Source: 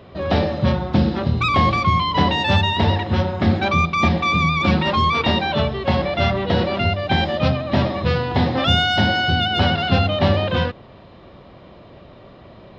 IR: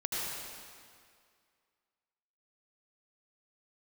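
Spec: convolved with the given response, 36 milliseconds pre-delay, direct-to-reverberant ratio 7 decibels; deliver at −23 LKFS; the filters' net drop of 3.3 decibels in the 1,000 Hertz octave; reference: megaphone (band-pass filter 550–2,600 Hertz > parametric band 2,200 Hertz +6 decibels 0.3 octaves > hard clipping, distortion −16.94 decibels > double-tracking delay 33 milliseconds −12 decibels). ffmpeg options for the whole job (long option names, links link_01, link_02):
-filter_complex "[0:a]equalizer=frequency=1000:width_type=o:gain=-3.5,asplit=2[link_01][link_02];[1:a]atrim=start_sample=2205,adelay=36[link_03];[link_02][link_03]afir=irnorm=-1:irlink=0,volume=-13dB[link_04];[link_01][link_04]amix=inputs=2:normalize=0,highpass=550,lowpass=2600,equalizer=frequency=2200:width_type=o:width=0.3:gain=6,asoftclip=type=hard:threshold=-17.5dB,asplit=2[link_05][link_06];[link_06]adelay=33,volume=-12dB[link_07];[link_05][link_07]amix=inputs=2:normalize=0,volume=-0.5dB"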